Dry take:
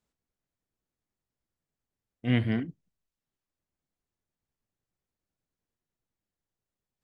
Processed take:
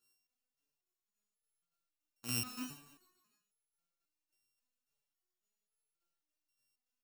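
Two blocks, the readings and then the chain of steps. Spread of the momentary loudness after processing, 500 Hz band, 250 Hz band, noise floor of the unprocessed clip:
13 LU, −20.0 dB, −17.0 dB, below −85 dBFS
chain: samples sorted by size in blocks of 32 samples
bass and treble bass −10 dB, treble +12 dB
downward compressor, threshold −27 dBFS, peak gain reduction 9.5 dB
brickwall limiter −18.5 dBFS, peak gain reduction 9.5 dB
shaped tremolo saw down 3.5 Hz, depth 65%
double-tracking delay 39 ms −11.5 dB
repeating echo 144 ms, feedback 59%, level −17.5 dB
step-sequenced resonator 3.7 Hz 120–440 Hz
level +10.5 dB

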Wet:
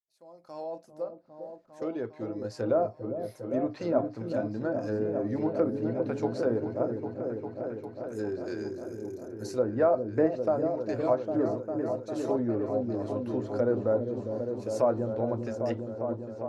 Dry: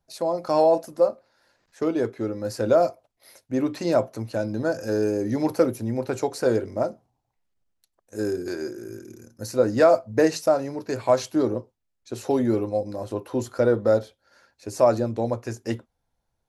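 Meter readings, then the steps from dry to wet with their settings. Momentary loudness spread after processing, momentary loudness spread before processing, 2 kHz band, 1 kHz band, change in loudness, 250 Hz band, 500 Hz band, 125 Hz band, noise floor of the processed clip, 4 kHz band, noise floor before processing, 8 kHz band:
11 LU, 12 LU, −9.5 dB, −8.0 dB, −6.5 dB, −4.5 dB, −6.0 dB, −4.5 dB, −53 dBFS, below −10 dB, −78 dBFS, below −10 dB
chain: fade in at the beginning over 2.79 s
treble cut that deepens with the level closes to 1,300 Hz, closed at −19 dBFS
echo whose low-pass opens from repeat to repeat 402 ms, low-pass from 400 Hz, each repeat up 1 octave, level −3 dB
level −7 dB

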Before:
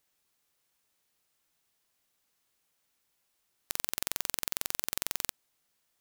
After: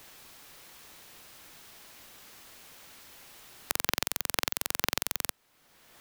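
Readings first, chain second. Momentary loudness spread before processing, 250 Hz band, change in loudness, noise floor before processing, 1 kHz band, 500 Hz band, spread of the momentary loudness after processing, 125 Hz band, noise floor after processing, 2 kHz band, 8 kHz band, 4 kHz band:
3 LU, +7.5 dB, +3.0 dB, −77 dBFS, +8.0 dB, +8.0 dB, 20 LU, +6.0 dB, −73 dBFS, +7.0 dB, +2.0 dB, +5.0 dB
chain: in parallel at −6 dB: sample-rate reduction 13,000 Hz, jitter 0%
on the sum: multiband upward and downward compressor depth 70%
level +2.5 dB

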